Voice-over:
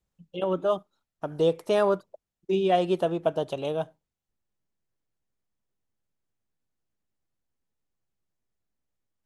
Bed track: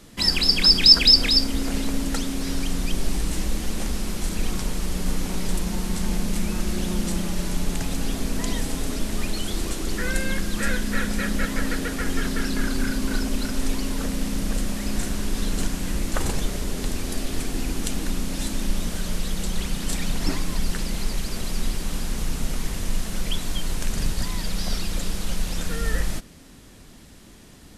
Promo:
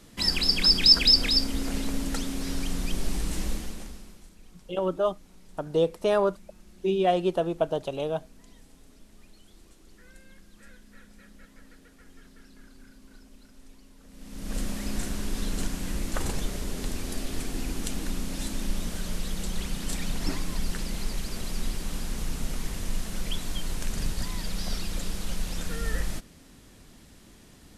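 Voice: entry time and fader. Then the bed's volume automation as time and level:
4.35 s, -0.5 dB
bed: 3.51 s -4.5 dB
4.36 s -27.5 dB
14.03 s -27.5 dB
14.58 s -5 dB

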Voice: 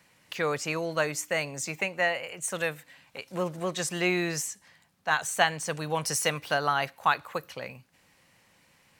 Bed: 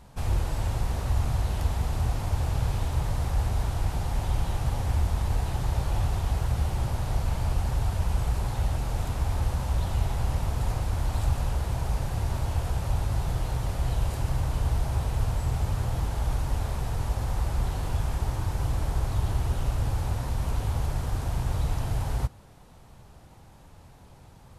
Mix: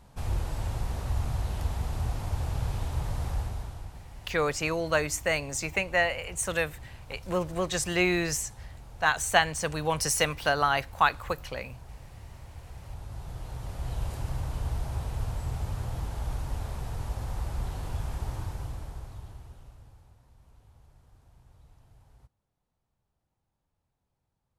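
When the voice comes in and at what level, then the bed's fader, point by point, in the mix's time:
3.95 s, +1.5 dB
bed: 3.32 s -4 dB
4.05 s -18 dB
12.54 s -18 dB
14.03 s -5.5 dB
18.4 s -5.5 dB
20.17 s -30 dB

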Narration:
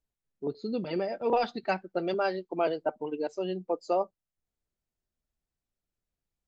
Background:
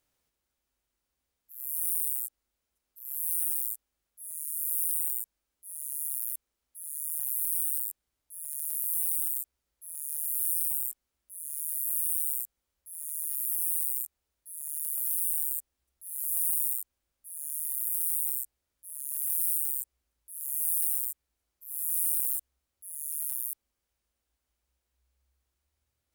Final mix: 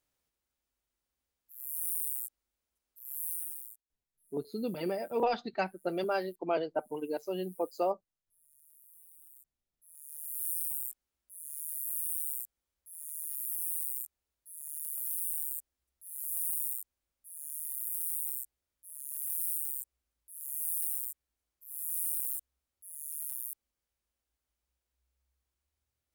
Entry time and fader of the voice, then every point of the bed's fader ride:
3.90 s, -3.0 dB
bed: 3.23 s -4.5 dB
4.2 s -28.5 dB
9.14 s -28.5 dB
10.48 s -5.5 dB

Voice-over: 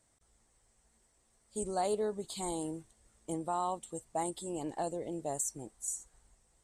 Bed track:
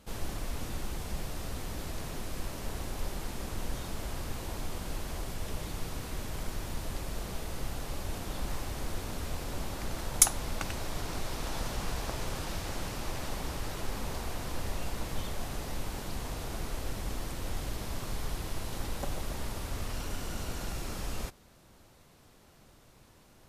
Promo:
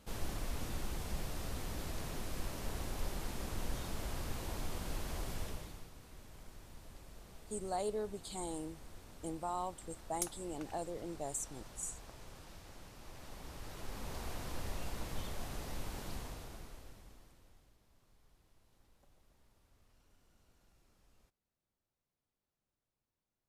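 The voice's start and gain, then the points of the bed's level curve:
5.95 s, -5.0 dB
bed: 5.4 s -3.5 dB
5.92 s -17.5 dB
12.94 s -17.5 dB
14.26 s -6 dB
16.14 s -6 dB
17.79 s -33.5 dB

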